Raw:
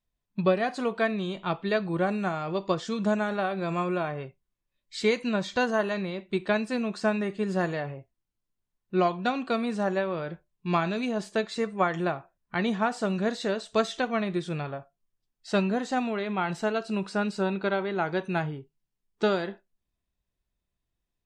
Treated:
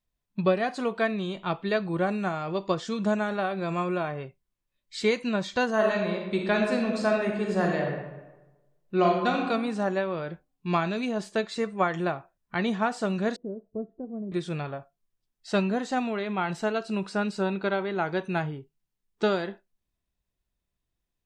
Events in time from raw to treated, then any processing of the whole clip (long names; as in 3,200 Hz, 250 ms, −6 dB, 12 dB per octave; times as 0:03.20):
0:05.72–0:09.45: thrown reverb, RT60 1.1 s, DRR 1 dB
0:13.36–0:14.32: transistor ladder low-pass 500 Hz, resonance 20%